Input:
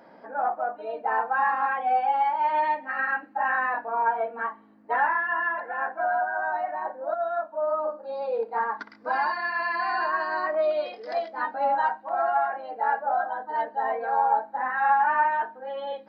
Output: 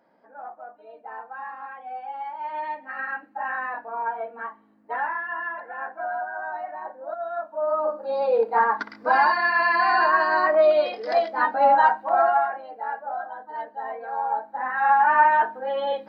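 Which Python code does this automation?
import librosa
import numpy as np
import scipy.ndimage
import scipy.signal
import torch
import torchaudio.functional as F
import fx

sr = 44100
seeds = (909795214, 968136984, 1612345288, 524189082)

y = fx.gain(x, sr, db=fx.line((1.91, -12.5), (2.93, -4.0), (7.17, -4.0), (8.14, 7.0), (12.17, 7.0), (12.81, -5.5), (14.1, -5.5), (15.36, 7.0)))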